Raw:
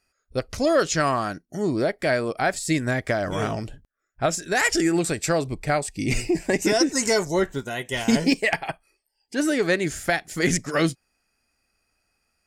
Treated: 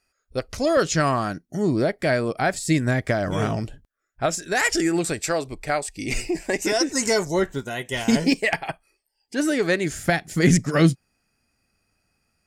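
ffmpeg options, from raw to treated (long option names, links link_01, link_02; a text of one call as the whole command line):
ffmpeg -i in.wav -af "asetnsamples=nb_out_samples=441:pad=0,asendcmd='0.77 equalizer g 5;3.65 equalizer g -1.5;5.22 equalizer g -8;6.91 equalizer g 1;9.99 equalizer g 10',equalizer=frequency=140:width_type=o:width=2:gain=-2" out.wav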